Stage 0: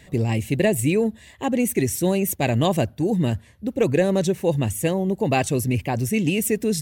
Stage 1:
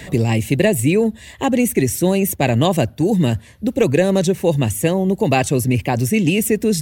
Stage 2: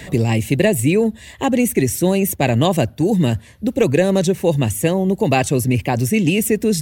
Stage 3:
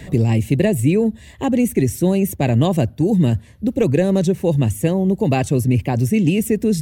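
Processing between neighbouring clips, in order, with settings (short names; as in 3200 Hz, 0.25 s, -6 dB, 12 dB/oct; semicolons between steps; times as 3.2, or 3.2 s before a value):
three-band squash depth 40%; gain +4.5 dB
nothing audible
low shelf 450 Hz +9 dB; gain -6.5 dB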